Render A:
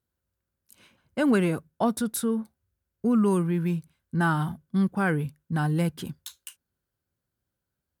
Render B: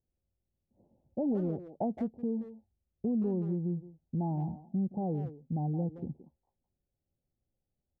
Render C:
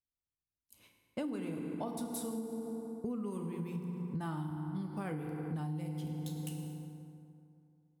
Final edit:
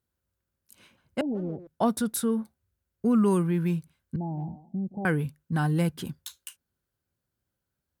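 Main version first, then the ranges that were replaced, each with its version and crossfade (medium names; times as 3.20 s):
A
1.21–1.67 s: from B
4.16–5.05 s: from B
not used: C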